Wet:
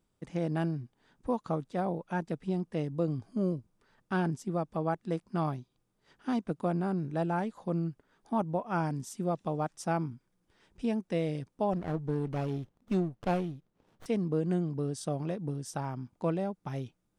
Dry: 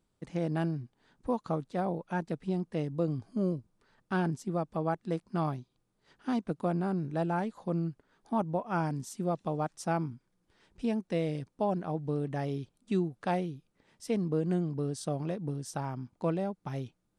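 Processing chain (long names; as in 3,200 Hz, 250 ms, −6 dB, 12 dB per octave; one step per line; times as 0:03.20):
notch filter 4,200 Hz, Q 15
0:11.73–0:14.06: windowed peak hold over 17 samples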